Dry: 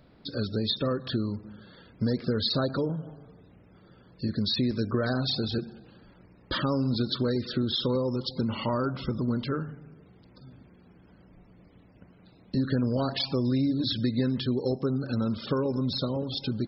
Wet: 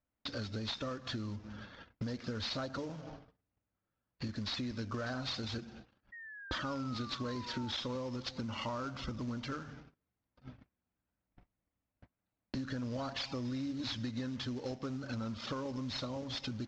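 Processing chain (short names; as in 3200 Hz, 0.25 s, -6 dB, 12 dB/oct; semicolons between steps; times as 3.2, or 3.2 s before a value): CVSD 32 kbps; fifteen-band EQ 160 Hz -12 dB, 400 Hz -10 dB, 4000 Hz -3 dB; gate -53 dBFS, range -37 dB; low-pass opened by the level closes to 2800 Hz, open at -32.5 dBFS; compressor 3:1, threshold -51 dBFS, peak gain reduction 17 dB; painted sound fall, 6.12–7.71, 860–1900 Hz -58 dBFS; gain +9 dB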